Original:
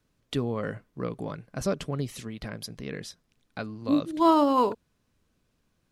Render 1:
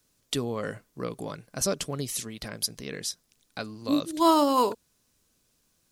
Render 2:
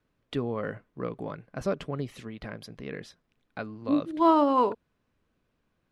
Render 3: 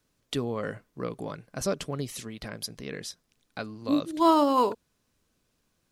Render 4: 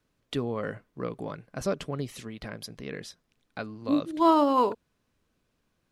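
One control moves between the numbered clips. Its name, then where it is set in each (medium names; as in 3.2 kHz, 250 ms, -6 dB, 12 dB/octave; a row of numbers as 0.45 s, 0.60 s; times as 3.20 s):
tone controls, treble: +14 dB, -13 dB, +5 dB, -3 dB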